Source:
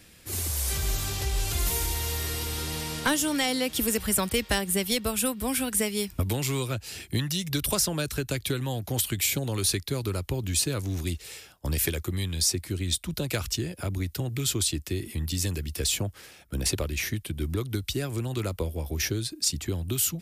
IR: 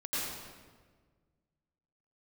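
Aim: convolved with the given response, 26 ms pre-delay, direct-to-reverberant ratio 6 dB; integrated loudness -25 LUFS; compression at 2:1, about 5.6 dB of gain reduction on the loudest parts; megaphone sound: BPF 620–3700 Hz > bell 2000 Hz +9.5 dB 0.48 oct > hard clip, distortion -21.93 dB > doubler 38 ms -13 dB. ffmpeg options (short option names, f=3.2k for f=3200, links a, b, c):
-filter_complex "[0:a]acompressor=threshold=-32dB:ratio=2,asplit=2[a][b];[1:a]atrim=start_sample=2205,adelay=26[c];[b][c]afir=irnorm=-1:irlink=0,volume=-11.5dB[d];[a][d]amix=inputs=2:normalize=0,highpass=620,lowpass=3.7k,equalizer=f=2k:t=o:w=0.48:g=9.5,asoftclip=type=hard:threshold=-23.5dB,asplit=2[e][f];[f]adelay=38,volume=-13dB[g];[e][g]amix=inputs=2:normalize=0,volume=11.5dB"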